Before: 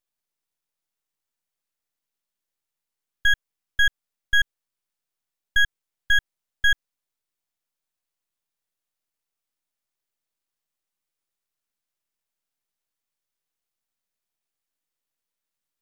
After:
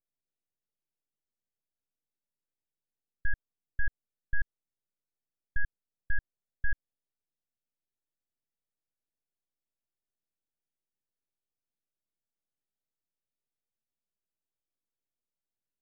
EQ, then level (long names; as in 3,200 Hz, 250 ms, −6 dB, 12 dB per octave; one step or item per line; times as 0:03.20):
moving average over 40 samples
−2.5 dB